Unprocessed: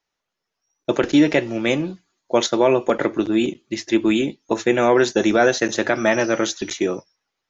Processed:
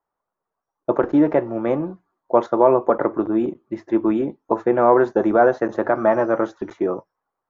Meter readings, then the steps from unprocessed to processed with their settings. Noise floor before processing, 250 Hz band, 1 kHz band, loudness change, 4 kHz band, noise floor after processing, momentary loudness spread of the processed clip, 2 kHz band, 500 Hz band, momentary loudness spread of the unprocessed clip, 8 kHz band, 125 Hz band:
-81 dBFS, -1.0 dB, +3.5 dB, 0.0 dB, under -20 dB, -84 dBFS, 9 LU, -7.5 dB, +1.0 dB, 8 LU, no reading, -2.5 dB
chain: FFT filter 240 Hz 0 dB, 1.1 kHz +8 dB, 2.7 kHz -19 dB, 6.1 kHz -26 dB; trim -2.5 dB

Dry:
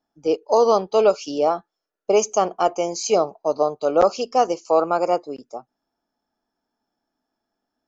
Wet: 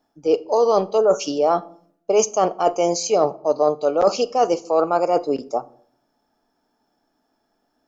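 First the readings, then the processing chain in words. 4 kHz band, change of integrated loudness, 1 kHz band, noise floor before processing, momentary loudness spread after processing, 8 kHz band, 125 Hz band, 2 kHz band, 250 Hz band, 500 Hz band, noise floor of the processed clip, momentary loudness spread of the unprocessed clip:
+1.5 dB, +0.5 dB, 0.0 dB, -82 dBFS, 6 LU, no reading, +3.0 dB, -0.5 dB, +2.0 dB, +1.0 dB, -71 dBFS, 10 LU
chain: spectral selection erased 0.98–1.20 s, 1.8–5.5 kHz; peaking EQ 530 Hz +2.5 dB 1.5 oct; reverse; compression 5:1, threshold -24 dBFS, peak gain reduction 13.5 dB; reverse; simulated room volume 770 m³, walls furnished, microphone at 0.38 m; trim +8.5 dB

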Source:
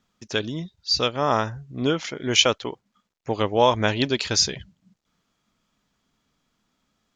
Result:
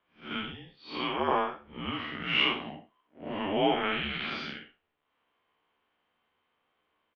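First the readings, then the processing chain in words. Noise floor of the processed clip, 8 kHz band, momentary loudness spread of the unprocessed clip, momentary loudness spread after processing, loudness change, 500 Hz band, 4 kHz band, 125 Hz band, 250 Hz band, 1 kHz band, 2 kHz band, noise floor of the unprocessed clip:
-78 dBFS, under -40 dB, 13 LU, 17 LU, -8.0 dB, -9.5 dB, -9.0 dB, -14.0 dB, -7.0 dB, -6.0 dB, -3.0 dB, -76 dBFS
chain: spectral blur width 161 ms; dynamic bell 560 Hz, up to -7 dB, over -36 dBFS, Q 0.97; doubling 14 ms -2.5 dB; mistuned SSB -200 Hz 440–3300 Hz

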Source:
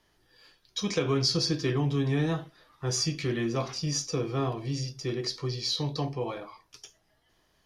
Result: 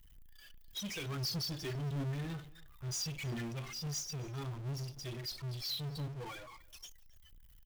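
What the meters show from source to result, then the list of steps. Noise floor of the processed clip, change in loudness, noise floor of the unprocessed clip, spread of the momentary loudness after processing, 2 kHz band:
-59 dBFS, -10.0 dB, -69 dBFS, 15 LU, -8.5 dB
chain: expander on every frequency bin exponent 2; amplifier tone stack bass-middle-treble 6-0-2; phaser 1.5 Hz, delay 2.8 ms, feedback 56%; power-law waveshaper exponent 0.35; delay 270 ms -23 dB; trim -2 dB

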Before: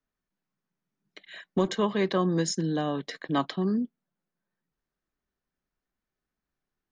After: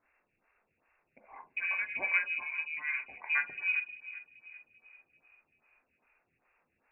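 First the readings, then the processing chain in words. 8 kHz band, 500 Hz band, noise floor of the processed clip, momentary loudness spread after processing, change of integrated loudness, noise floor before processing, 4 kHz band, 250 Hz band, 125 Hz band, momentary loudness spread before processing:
under -40 dB, -25.5 dB, -80 dBFS, 17 LU, -4.0 dB, under -85 dBFS, -15.0 dB, under -35 dB, under -35 dB, 10 LU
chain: reverb removal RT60 0.72 s; in parallel at -11 dB: word length cut 8-bit, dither triangular; on the sum: distance through air 240 m; on a send: filtered feedback delay 389 ms, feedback 50%, low-pass 990 Hz, level -14.5 dB; on the sum: gated-style reverb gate 280 ms falling, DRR 3.5 dB; frequency inversion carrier 2.7 kHz; lamp-driven phase shifter 2.5 Hz; trim -4.5 dB

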